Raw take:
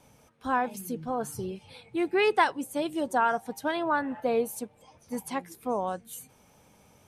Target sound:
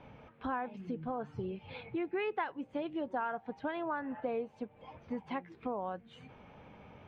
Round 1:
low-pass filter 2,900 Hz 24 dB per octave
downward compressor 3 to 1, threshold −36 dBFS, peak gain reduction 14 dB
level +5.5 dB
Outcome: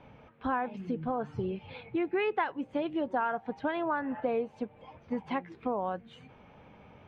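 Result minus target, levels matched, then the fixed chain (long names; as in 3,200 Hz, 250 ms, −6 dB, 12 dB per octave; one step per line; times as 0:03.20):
downward compressor: peak gain reduction −5.5 dB
low-pass filter 2,900 Hz 24 dB per octave
downward compressor 3 to 1, threshold −44 dBFS, peak gain reduction 19 dB
level +5.5 dB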